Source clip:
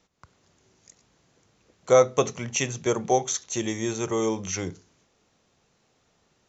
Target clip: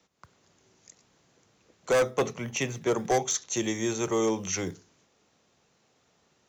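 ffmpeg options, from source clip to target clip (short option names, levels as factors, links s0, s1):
-filter_complex "[0:a]asettb=1/sr,asplit=3[s0][s1][s2];[s0]atrim=end=2.094[s3];[s1]atrim=start=2.09:end=2.95,asetpts=PTS-STARTPTS,afade=t=in:d=0.004:c=qsin,afade=t=out:st=0.856:d=0.004:c=qsin,highshelf=f=4400:g=-10.5[s4];[s2]atrim=start=2.946[s5];[s3][s4]acrossfade=d=0.004:c1=hsin:c2=qsin[s6];[s6][s5]acrossfade=d=0.004:c1=qsin:c2=hsin,acrossover=split=140|470|3000[s7][s8][s9][s10];[s7]acrusher=samples=20:mix=1:aa=0.000001:lfo=1:lforange=12:lforate=1.1[s11];[s11][s8][s9][s10]amix=inputs=4:normalize=0,highpass=f=110:p=1,asoftclip=type=hard:threshold=0.106"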